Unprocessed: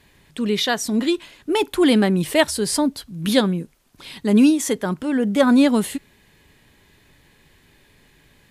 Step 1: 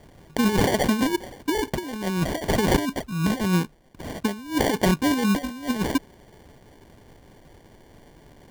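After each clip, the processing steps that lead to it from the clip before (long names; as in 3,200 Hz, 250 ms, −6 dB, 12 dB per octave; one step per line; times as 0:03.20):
compressor whose output falls as the input rises −22 dBFS, ratio −0.5
decimation without filtering 34×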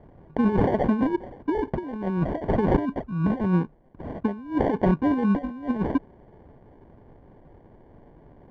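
low-pass filter 1,100 Hz 12 dB per octave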